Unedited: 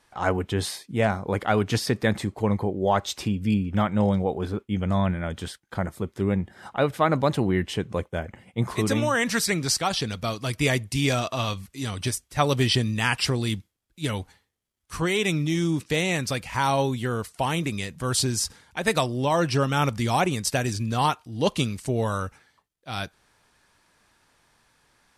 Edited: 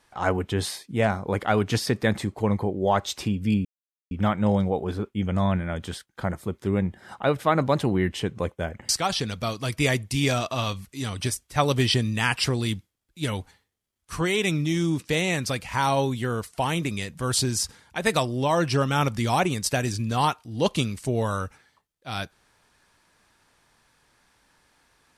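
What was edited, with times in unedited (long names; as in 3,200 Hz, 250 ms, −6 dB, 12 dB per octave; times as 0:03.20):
0:03.65: splice in silence 0.46 s
0:08.43–0:09.70: remove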